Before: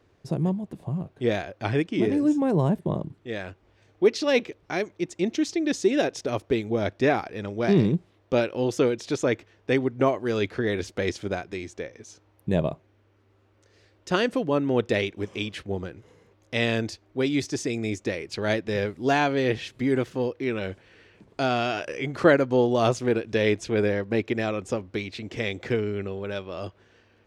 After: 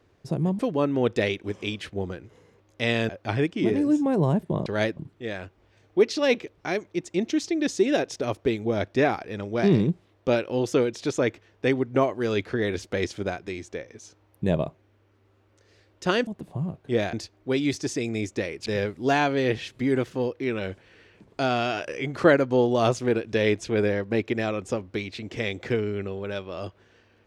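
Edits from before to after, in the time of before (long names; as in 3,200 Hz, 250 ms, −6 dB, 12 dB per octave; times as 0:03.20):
0:00.59–0:01.45: swap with 0:14.32–0:16.82
0:18.35–0:18.66: move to 0:03.02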